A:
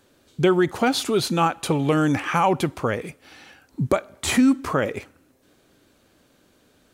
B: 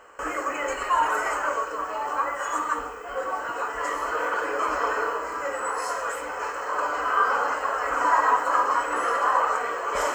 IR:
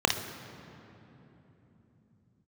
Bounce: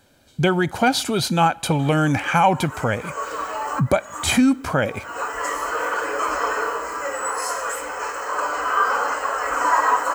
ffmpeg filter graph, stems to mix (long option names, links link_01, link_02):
-filter_complex "[0:a]aecho=1:1:1.3:0.49,volume=2dB,asplit=2[link_01][link_02];[1:a]highshelf=frequency=5200:gain=10,adelay=1600,volume=2dB[link_03];[link_02]apad=whole_len=518102[link_04];[link_03][link_04]sidechaincompress=threshold=-36dB:ratio=8:attack=16:release=227[link_05];[link_01][link_05]amix=inputs=2:normalize=0"